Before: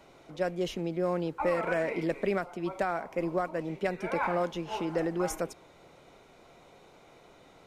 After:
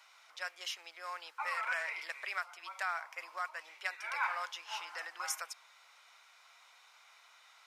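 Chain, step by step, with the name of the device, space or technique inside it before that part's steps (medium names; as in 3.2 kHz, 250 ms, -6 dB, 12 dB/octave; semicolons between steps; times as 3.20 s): headphones lying on a table (high-pass 1.1 kHz 24 dB/octave; peaking EQ 5.2 kHz +5 dB 0.26 oct); trim +1 dB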